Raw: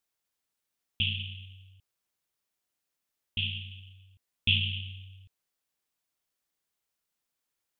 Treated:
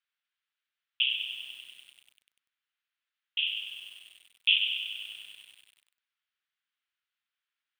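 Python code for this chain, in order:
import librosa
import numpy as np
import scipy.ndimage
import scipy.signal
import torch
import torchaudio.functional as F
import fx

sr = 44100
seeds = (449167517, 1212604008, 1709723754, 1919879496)

y = scipy.signal.sosfilt(scipy.signal.cheby1(2, 1.0, [1400.0, 3300.0], 'bandpass', fs=sr, output='sos'), x)
y = fx.echo_crushed(y, sr, ms=97, feedback_pct=80, bits=9, wet_db=-11.0)
y = F.gain(torch.from_numpy(y), 3.0).numpy()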